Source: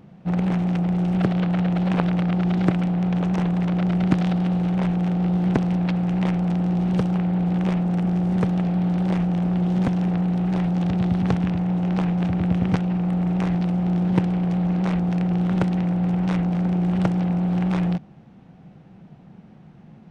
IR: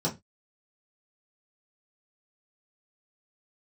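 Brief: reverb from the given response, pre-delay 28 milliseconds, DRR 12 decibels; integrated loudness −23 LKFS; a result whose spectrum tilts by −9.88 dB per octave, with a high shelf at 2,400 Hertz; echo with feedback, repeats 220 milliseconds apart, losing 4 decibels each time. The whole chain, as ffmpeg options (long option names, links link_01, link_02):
-filter_complex "[0:a]highshelf=frequency=2400:gain=5,aecho=1:1:220|440|660|880|1100|1320|1540|1760|1980:0.631|0.398|0.25|0.158|0.0994|0.0626|0.0394|0.0249|0.0157,asplit=2[link_01][link_02];[1:a]atrim=start_sample=2205,adelay=28[link_03];[link_02][link_03]afir=irnorm=-1:irlink=0,volume=-20dB[link_04];[link_01][link_04]amix=inputs=2:normalize=0,volume=-8dB"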